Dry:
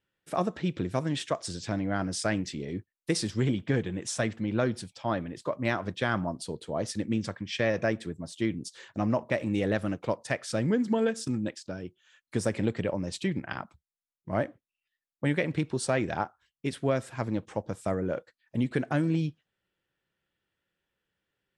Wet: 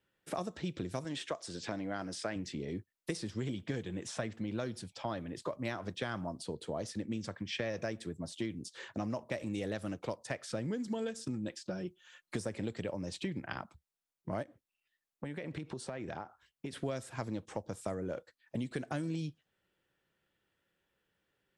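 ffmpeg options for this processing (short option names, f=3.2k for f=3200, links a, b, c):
-filter_complex "[0:a]asettb=1/sr,asplit=3[a][b][c];[a]atrim=end=1.044[d];[b]atrim=start=1.04:end=2.36,asetpts=PTS-STARTPTS,afade=t=in:d=0.004:c=qsin,afade=t=out:st=1.316:d=0.004:c=qsin,equalizer=f=85:t=o:w=2:g=-11.5[e];[c]atrim=start=2.356[f];[d][e]acrossfade=d=0.004:c1=hsin:c2=qsin[g];[g][f]acrossfade=d=0.004:c1=qsin:c2=hsin,asettb=1/sr,asplit=3[h][i][j];[h]atrim=end=11.504[k];[i]atrim=start=11.5:end=12.36,asetpts=PTS-STARTPTS,afade=t=in:d=0.004:c=qsin,afade=t=out:st=0.856:d=0.004:c=qsin,aecho=1:1:5.6:0.78,atrim=end_sample=37926[l];[j]atrim=start=12.356[m];[k][l]acrossfade=d=0.004:c1=hsin:c2=qsin[n];[n][m]acrossfade=d=0.004:c1=qsin:c2=hsin,asplit=3[o][p][q];[o]afade=t=out:st=14.42:d=0.02[r];[p]acompressor=threshold=-39dB:ratio=5:attack=3.2:release=140:knee=1:detection=peak,afade=t=in:st=14.42:d=0.02,afade=t=out:st=16.75:d=0.02[s];[q]afade=t=in:st=16.75:d=0.02[t];[r][s][t]amix=inputs=3:normalize=0,equalizer=f=520:w=0.43:g=3,acrossover=split=84|3900[u][v][w];[u]acompressor=threshold=-55dB:ratio=4[x];[v]acompressor=threshold=-38dB:ratio=4[y];[w]acompressor=threshold=-50dB:ratio=4[z];[x][y][z]amix=inputs=3:normalize=0,volume=1dB"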